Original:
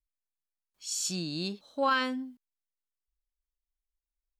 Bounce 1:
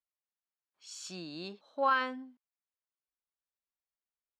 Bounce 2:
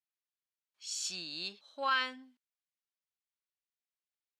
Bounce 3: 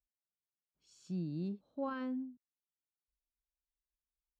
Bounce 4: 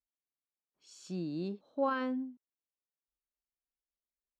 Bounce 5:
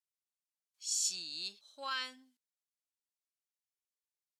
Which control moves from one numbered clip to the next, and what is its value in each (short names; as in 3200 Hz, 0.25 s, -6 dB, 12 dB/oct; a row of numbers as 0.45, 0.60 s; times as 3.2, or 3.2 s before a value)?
band-pass, frequency: 1000, 2600, 120, 340, 6900 Hz